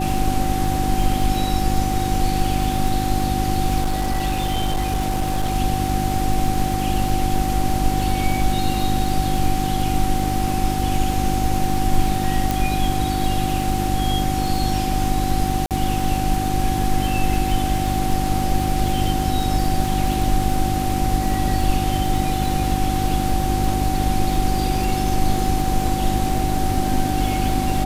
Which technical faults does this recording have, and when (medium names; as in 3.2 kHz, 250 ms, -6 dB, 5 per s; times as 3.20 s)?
crackle 74 per s -25 dBFS
hum 50 Hz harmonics 7 -24 dBFS
whine 760 Hz -24 dBFS
3.81–5.56 s: clipped -16.5 dBFS
12.51 s: pop
15.66–15.71 s: dropout 48 ms